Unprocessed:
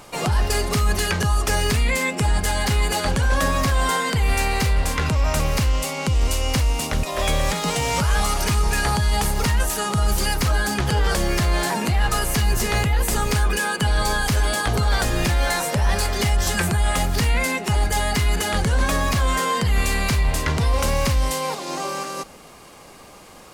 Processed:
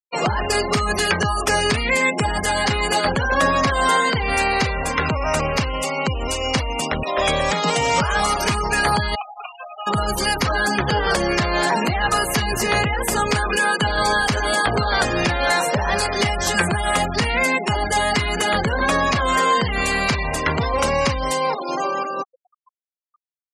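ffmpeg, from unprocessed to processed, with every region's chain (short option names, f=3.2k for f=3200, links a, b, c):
-filter_complex "[0:a]asettb=1/sr,asplit=3[a][b][c];[a]atrim=end=9.154[d];[b]atrim=start=9.15:end=9.87,asetpts=PTS-STARTPTS,afade=t=in:d=0.004:c=qsin,afade=t=out:st=0.716:d=0.004:c=qsin,asplit=3[e][f][g];[e]bandpass=f=730:t=q:w=8,volume=0dB[h];[f]bandpass=f=1.09k:t=q:w=8,volume=-6dB[i];[g]bandpass=f=2.44k:t=q:w=8,volume=-9dB[j];[h][i][j]amix=inputs=3:normalize=0,tiltshelf=f=810:g=-8[k];[c]atrim=start=9.866[l];[d][k]acrossfade=d=0.004:c1=hsin:c2=qsin[m];[m][l]acrossfade=d=0.004:c1=qsin:c2=hsin,highpass=f=280:p=1,highshelf=f=3.8k:g=-3.5,afftfilt=real='re*gte(hypot(re,im),0.0355)':imag='im*gte(hypot(re,im),0.0355)':win_size=1024:overlap=0.75,volume=6dB"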